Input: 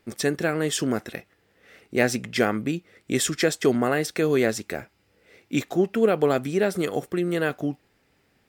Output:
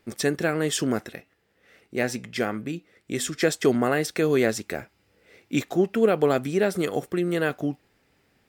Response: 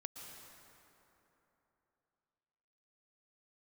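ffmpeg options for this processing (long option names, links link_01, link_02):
-filter_complex "[0:a]asplit=3[link_01][link_02][link_03];[link_01]afade=type=out:start_time=1.07:duration=0.02[link_04];[link_02]flanger=delay=4.9:depth=1.1:regen=-89:speed=1.4:shape=triangular,afade=type=in:start_time=1.07:duration=0.02,afade=type=out:start_time=3.41:duration=0.02[link_05];[link_03]afade=type=in:start_time=3.41:duration=0.02[link_06];[link_04][link_05][link_06]amix=inputs=3:normalize=0"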